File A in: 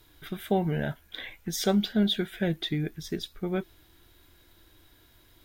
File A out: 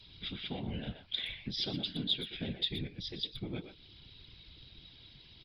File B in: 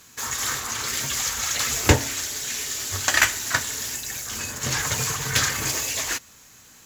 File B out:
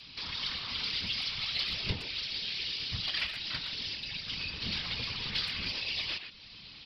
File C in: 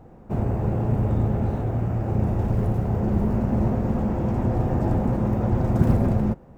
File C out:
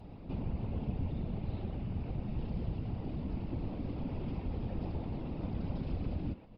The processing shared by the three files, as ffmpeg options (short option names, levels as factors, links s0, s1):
-filter_complex "[0:a]acompressor=threshold=0.00891:ratio=2,aresample=11025,asoftclip=type=tanh:threshold=0.0473,aresample=44100,aexciter=amount=6.4:drive=8.8:freq=2500,bass=f=250:g=9,treble=f=4000:g=-13,asplit=2[s0][s1];[s1]adelay=120,highpass=300,lowpass=3400,asoftclip=type=hard:threshold=0.075,volume=0.447[s2];[s0][s2]amix=inputs=2:normalize=0,afftfilt=real='hypot(re,im)*cos(2*PI*random(0))':imag='hypot(re,im)*sin(2*PI*random(1))':win_size=512:overlap=0.75,adynamicequalizer=threshold=0.00398:dfrequency=150:dqfactor=0.73:tfrequency=150:tqfactor=0.73:attack=5:release=100:ratio=0.375:range=2.5:mode=cutabove:tftype=bell"